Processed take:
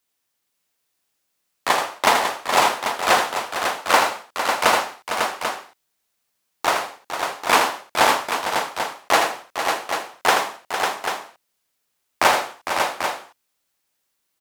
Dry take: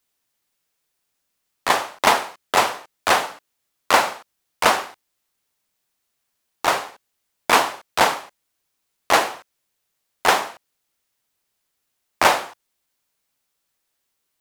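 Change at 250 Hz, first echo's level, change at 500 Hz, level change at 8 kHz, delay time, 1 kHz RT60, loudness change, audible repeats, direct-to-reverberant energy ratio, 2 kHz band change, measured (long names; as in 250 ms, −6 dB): +0.5 dB, −7.0 dB, +1.5 dB, +1.5 dB, 80 ms, no reverb audible, −1.0 dB, 4, no reverb audible, +1.5 dB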